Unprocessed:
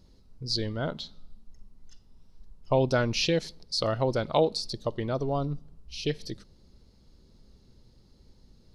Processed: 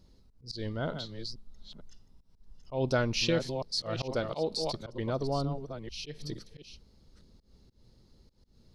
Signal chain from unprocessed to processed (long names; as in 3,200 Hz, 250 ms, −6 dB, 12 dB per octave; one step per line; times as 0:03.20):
delay that plays each chunk backwards 453 ms, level −9 dB
volume swells 149 ms
level −2.5 dB